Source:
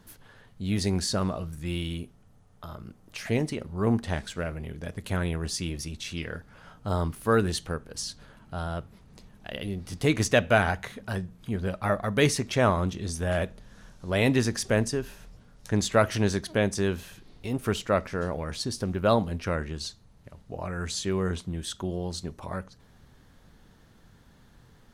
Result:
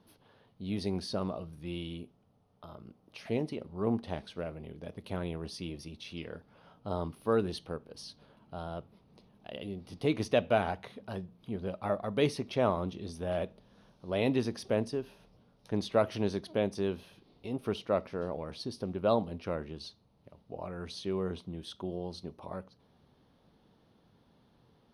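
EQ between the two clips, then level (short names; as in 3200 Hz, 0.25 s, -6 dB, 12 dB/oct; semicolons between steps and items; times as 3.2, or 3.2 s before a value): running mean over 6 samples; HPF 270 Hz 6 dB/oct; bell 1700 Hz -12 dB 0.99 oct; -2.0 dB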